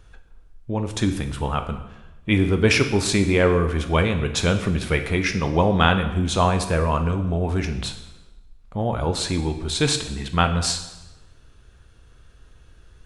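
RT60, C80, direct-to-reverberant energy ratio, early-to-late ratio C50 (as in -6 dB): 1.0 s, 12.0 dB, 6.5 dB, 10.0 dB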